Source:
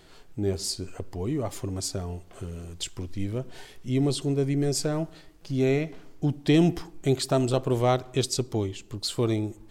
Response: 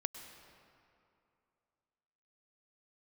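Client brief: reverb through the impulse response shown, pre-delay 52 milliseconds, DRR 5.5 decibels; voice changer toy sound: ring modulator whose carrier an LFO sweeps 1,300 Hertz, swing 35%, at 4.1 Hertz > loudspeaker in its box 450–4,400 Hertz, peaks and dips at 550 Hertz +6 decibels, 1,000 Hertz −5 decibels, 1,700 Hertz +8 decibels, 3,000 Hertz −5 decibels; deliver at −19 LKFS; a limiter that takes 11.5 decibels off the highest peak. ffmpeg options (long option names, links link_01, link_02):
-filter_complex "[0:a]alimiter=limit=-22dB:level=0:latency=1,asplit=2[link_01][link_02];[1:a]atrim=start_sample=2205,adelay=52[link_03];[link_02][link_03]afir=irnorm=-1:irlink=0,volume=-5dB[link_04];[link_01][link_04]amix=inputs=2:normalize=0,aeval=exprs='val(0)*sin(2*PI*1300*n/s+1300*0.35/4.1*sin(2*PI*4.1*n/s))':channel_layout=same,highpass=450,equalizer=frequency=550:width_type=q:width=4:gain=6,equalizer=frequency=1000:width_type=q:width=4:gain=-5,equalizer=frequency=1700:width_type=q:width=4:gain=8,equalizer=frequency=3000:width_type=q:width=4:gain=-5,lowpass=frequency=4400:width=0.5412,lowpass=frequency=4400:width=1.3066,volume=11dB"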